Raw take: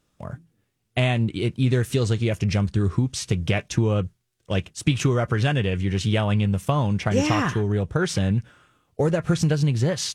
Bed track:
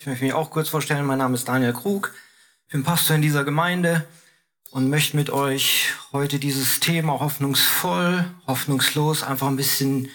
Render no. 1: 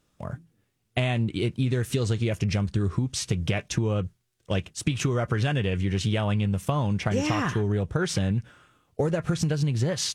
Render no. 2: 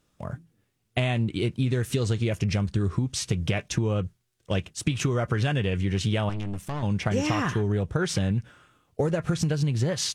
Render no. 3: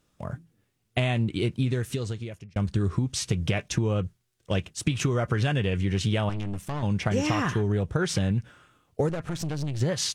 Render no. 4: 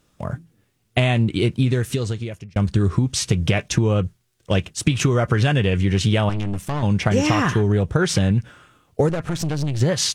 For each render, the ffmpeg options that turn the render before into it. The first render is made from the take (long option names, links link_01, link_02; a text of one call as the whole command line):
ffmpeg -i in.wav -af "acompressor=threshold=-21dB:ratio=6" out.wav
ffmpeg -i in.wav -filter_complex "[0:a]asettb=1/sr,asplit=3[link_01][link_02][link_03];[link_01]atrim=end=6.294[link_04];[link_02]atrim=start=6.29:end=6.83,asetpts=PTS-STARTPTS,afade=type=in:duration=0.004:curve=qsin,afade=type=out:start_time=0.536:duration=0.004:curve=qsin,aeval=exprs='(tanh(25.1*val(0)+0.7)-tanh(0.7))/25.1':channel_layout=same[link_05];[link_03]atrim=start=6.826[link_06];[link_04][link_05]acrossfade=duration=0.004:curve1=hsin:curve2=qsin[link_07];[link_07][link_06]acrossfade=duration=0.004:curve1=qsin:curve2=hsin" out.wav
ffmpeg -i in.wav -filter_complex "[0:a]asettb=1/sr,asplit=3[link_01][link_02][link_03];[link_01]atrim=end=9.094[link_04];[link_02]atrim=start=9.09:end=9.81,asetpts=PTS-STARTPTS,afade=type=in:duration=0.004:curve=qsin,afade=type=out:start_time=0.716:duration=0.004:curve=qsin,aeval=exprs='(tanh(22.4*val(0)+0.6)-tanh(0.6))/22.4':channel_layout=same[link_05];[link_03]atrim=start=9.806[link_06];[link_04][link_05]acrossfade=duration=0.004:curve1=hsin:curve2=qsin[link_07];[link_07][link_06]acrossfade=duration=0.004:curve1=qsin:curve2=hsin,asplit=2[link_08][link_09];[link_08]atrim=end=2.56,asetpts=PTS-STARTPTS,afade=type=out:start_time=1.58:duration=0.98[link_10];[link_09]atrim=start=2.56,asetpts=PTS-STARTPTS,afade=type=in:duration=0.004:curve=hsin[link_11];[link_10][link_11]concat=n=2:v=0:a=1" out.wav
ffmpeg -i in.wav -af "volume=7dB" out.wav